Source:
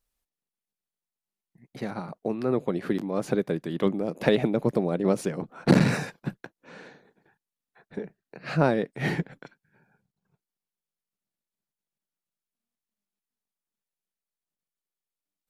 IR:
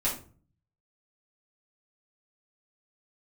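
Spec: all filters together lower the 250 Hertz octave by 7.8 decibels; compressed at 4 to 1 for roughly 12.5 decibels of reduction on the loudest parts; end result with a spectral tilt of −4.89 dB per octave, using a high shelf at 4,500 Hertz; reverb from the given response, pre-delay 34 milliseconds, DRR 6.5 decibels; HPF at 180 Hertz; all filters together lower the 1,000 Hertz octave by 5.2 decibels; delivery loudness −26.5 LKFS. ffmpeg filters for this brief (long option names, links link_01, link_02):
-filter_complex "[0:a]highpass=180,equalizer=frequency=250:width_type=o:gain=-8.5,equalizer=frequency=1000:width_type=o:gain=-7,highshelf=frequency=4500:gain=4,acompressor=threshold=-35dB:ratio=4,asplit=2[link_01][link_02];[1:a]atrim=start_sample=2205,adelay=34[link_03];[link_02][link_03]afir=irnorm=-1:irlink=0,volume=-14dB[link_04];[link_01][link_04]amix=inputs=2:normalize=0,volume=13dB"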